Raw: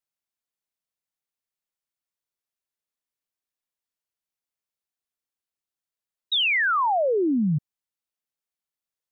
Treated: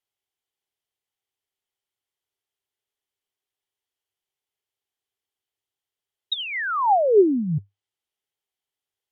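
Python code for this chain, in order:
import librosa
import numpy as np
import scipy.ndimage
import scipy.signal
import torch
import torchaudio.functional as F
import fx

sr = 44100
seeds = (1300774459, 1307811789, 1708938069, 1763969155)

y = fx.env_lowpass_down(x, sr, base_hz=1200.0, full_db=-21.0)
y = fx.graphic_eq_31(y, sr, hz=(100, 200, 400, 800, 2000, 3150), db=(11, -6, 11, 7, 4, 10))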